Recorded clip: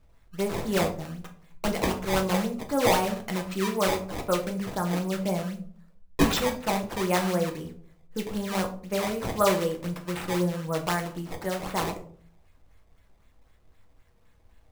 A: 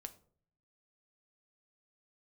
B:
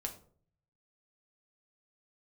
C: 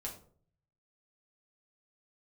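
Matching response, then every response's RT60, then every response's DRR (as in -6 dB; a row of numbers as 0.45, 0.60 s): B; 0.55, 0.50, 0.50 s; 8.0, 2.5, -2.5 dB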